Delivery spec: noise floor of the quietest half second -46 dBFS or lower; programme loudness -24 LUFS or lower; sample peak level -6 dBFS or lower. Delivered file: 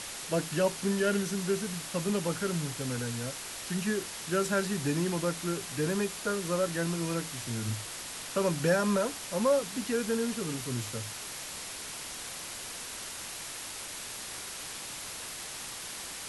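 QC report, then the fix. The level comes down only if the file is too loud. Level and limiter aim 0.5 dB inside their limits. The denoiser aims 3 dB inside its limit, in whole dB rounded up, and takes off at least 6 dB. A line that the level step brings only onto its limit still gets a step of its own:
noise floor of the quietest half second -41 dBFS: fail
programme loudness -32.5 LUFS: OK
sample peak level -16.0 dBFS: OK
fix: denoiser 8 dB, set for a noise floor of -41 dBFS

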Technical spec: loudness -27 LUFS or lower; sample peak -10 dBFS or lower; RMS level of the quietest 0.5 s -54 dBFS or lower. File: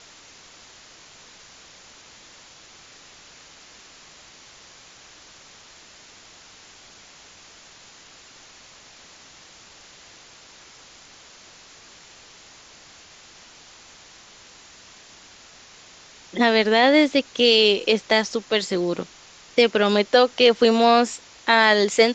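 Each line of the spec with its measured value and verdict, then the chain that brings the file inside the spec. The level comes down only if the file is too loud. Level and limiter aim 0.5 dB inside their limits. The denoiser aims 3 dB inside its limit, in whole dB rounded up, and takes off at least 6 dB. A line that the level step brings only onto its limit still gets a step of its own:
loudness -18.5 LUFS: fail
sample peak -2.0 dBFS: fail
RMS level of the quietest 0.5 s -48 dBFS: fail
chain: gain -9 dB

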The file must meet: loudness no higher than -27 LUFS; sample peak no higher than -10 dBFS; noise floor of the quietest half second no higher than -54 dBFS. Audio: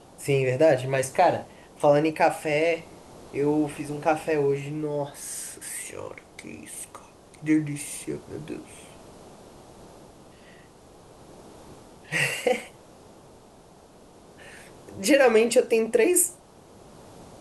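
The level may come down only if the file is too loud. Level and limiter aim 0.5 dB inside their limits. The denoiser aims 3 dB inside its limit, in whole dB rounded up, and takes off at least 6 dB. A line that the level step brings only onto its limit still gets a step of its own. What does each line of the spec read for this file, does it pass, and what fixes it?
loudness -24.5 LUFS: fail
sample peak -6.0 dBFS: fail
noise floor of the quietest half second -52 dBFS: fail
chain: gain -3 dB; limiter -10.5 dBFS

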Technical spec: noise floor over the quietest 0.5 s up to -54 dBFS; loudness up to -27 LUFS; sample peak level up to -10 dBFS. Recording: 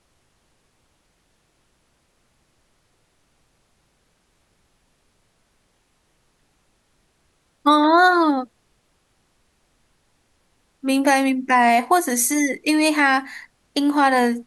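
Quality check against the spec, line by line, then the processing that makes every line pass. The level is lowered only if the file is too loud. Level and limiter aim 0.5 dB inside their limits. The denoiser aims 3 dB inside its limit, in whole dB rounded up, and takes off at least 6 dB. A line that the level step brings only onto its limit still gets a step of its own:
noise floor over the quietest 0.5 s -65 dBFS: OK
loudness -18.0 LUFS: fail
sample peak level -5.0 dBFS: fail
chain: gain -9.5 dB

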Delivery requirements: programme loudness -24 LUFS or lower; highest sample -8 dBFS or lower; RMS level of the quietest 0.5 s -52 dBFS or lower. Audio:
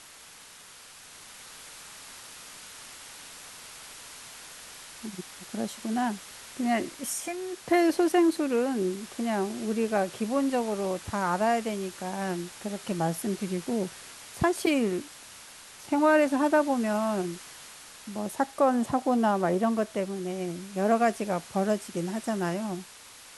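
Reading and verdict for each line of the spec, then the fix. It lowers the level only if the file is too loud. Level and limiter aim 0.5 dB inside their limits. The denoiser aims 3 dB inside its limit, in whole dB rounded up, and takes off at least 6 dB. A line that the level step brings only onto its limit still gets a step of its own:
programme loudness -28.0 LUFS: OK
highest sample -12.0 dBFS: OK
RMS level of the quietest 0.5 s -50 dBFS: fail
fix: denoiser 6 dB, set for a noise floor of -50 dBFS

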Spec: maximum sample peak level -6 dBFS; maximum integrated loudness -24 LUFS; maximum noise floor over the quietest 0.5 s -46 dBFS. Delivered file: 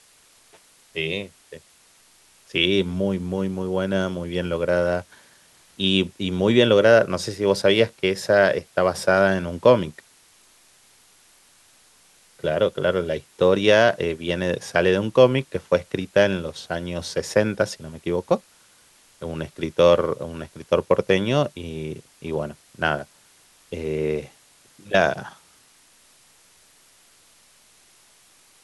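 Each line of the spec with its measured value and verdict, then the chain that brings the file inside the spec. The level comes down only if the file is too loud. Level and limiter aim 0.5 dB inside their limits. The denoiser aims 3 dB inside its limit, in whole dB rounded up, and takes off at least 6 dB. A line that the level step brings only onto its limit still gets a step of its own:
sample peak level -3.5 dBFS: fail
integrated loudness -21.5 LUFS: fail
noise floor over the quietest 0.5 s -56 dBFS: OK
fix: gain -3 dB

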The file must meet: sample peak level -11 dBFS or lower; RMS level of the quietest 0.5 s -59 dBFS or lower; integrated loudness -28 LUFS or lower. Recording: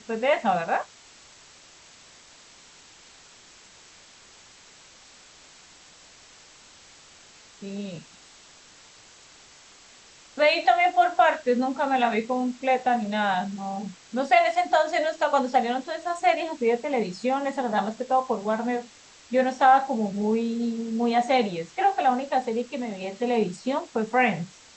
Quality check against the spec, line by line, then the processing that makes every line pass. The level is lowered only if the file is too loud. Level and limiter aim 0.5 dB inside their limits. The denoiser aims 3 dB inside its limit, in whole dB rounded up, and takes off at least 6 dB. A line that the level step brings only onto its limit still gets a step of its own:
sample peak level -7.0 dBFS: fail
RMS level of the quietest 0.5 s -52 dBFS: fail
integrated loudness -24.5 LUFS: fail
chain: denoiser 6 dB, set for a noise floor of -52 dBFS; gain -4 dB; limiter -11.5 dBFS

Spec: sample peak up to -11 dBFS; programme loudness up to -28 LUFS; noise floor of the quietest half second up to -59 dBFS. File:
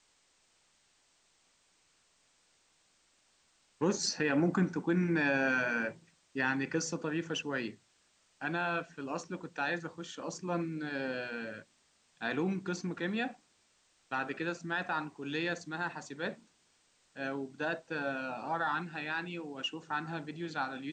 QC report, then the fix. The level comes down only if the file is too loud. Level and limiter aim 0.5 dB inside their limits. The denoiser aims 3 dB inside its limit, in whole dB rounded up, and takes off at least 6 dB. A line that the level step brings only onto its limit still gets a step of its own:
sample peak -18.0 dBFS: OK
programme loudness -35.0 LUFS: OK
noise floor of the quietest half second -71 dBFS: OK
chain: none

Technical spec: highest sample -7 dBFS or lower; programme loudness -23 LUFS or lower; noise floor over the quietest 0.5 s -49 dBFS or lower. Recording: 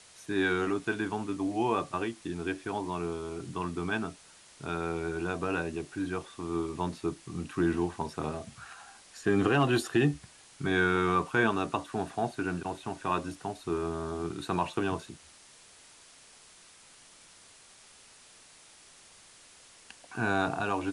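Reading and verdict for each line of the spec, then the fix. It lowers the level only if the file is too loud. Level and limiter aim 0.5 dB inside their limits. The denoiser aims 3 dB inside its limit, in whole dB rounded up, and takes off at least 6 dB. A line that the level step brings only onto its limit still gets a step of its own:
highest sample -13.0 dBFS: OK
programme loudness -31.5 LUFS: OK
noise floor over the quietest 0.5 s -56 dBFS: OK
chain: none

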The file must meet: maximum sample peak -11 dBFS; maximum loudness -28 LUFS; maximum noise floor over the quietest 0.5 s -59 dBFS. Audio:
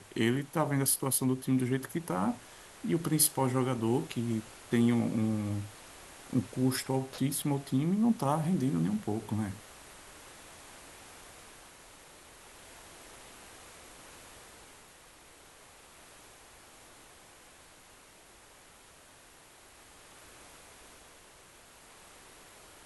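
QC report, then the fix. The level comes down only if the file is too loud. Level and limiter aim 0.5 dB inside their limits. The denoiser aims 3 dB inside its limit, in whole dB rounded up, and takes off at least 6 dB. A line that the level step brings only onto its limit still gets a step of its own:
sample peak -13.5 dBFS: OK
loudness -31.0 LUFS: OK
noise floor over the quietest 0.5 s -57 dBFS: fail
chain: denoiser 6 dB, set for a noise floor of -57 dBFS

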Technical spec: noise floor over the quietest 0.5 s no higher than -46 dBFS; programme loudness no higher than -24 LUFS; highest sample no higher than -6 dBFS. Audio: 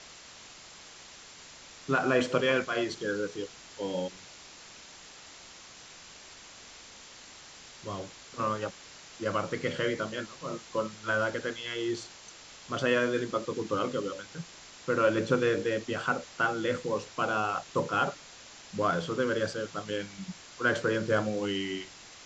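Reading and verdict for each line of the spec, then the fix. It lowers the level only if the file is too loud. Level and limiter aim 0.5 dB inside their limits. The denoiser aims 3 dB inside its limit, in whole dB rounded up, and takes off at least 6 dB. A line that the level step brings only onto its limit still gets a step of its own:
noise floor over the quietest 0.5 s -50 dBFS: OK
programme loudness -31.0 LUFS: OK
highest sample -12.0 dBFS: OK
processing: none

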